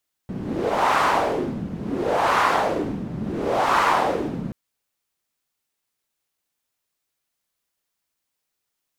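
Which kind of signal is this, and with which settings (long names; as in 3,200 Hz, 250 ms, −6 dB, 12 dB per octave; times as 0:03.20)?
wind from filtered noise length 4.23 s, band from 180 Hz, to 1,100 Hz, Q 2.4, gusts 3, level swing 11.5 dB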